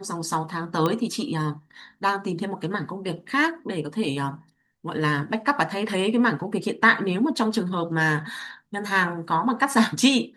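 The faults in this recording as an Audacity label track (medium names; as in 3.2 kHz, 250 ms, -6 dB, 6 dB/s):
0.860000	0.860000	pop -11 dBFS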